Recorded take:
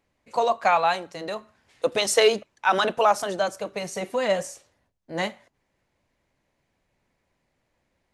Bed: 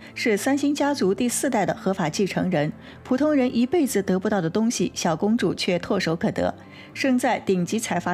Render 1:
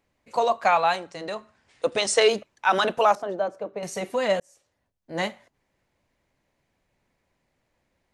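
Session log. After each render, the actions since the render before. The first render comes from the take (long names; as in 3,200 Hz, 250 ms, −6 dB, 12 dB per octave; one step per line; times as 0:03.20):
0:00.96–0:02.29: Chebyshev low-pass filter 9,900 Hz, order 10
0:03.15–0:03.83: resonant band-pass 430 Hz, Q 0.68
0:04.40–0:05.19: fade in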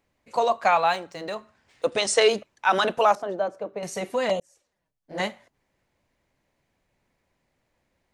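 0:00.82–0:01.86: running median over 3 samples
0:04.29–0:05.20: flanger swept by the level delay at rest 7.4 ms, full sweep at −21 dBFS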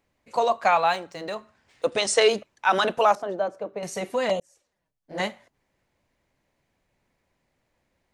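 no processing that can be heard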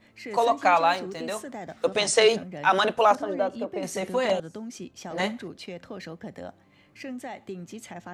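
mix in bed −16 dB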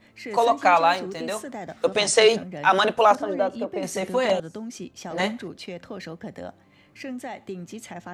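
level +2.5 dB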